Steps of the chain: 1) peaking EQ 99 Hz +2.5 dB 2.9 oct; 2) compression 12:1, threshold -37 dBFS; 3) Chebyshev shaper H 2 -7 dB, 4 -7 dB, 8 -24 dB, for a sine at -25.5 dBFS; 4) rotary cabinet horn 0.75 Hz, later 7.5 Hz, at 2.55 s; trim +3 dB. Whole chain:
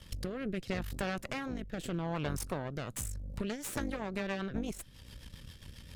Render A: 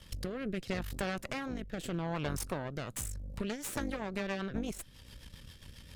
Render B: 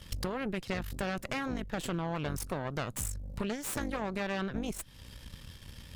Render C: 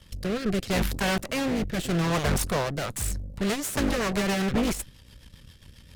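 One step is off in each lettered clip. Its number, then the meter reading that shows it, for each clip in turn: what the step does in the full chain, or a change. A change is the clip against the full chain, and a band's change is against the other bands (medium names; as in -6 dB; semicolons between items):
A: 1, momentary loudness spread change +1 LU; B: 4, 125 Hz band -1.5 dB; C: 2, mean gain reduction 9.5 dB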